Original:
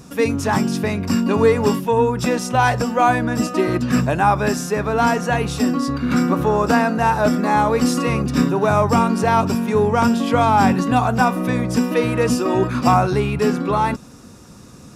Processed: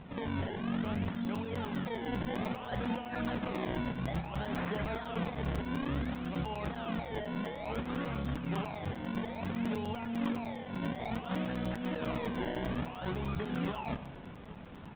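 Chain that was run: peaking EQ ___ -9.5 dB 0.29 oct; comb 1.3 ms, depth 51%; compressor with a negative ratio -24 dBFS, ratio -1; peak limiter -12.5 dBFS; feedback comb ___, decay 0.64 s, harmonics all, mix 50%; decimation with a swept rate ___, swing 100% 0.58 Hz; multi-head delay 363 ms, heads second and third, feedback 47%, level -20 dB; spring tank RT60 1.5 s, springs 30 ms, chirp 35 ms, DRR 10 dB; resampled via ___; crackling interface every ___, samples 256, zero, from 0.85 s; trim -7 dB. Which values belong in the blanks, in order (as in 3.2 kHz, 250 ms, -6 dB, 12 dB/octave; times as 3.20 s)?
120 Hz, 170 Hz, 24×, 8 kHz, 0.10 s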